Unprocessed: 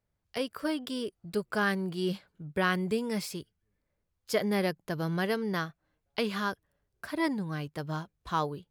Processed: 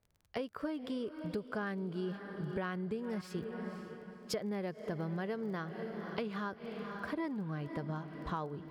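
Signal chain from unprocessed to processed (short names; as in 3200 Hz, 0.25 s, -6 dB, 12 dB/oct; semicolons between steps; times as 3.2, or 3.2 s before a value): LPF 1300 Hz 6 dB/oct; diffused feedback echo 0.517 s, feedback 48%, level -14 dB; compressor 6:1, threshold -40 dBFS, peak gain reduction 15.5 dB; crackle 16/s -55 dBFS; 3.21–4.34 three-band expander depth 70%; gain +4.5 dB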